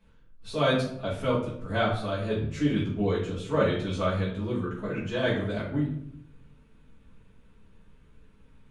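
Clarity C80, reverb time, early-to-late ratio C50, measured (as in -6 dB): 8.5 dB, 0.70 s, 4.5 dB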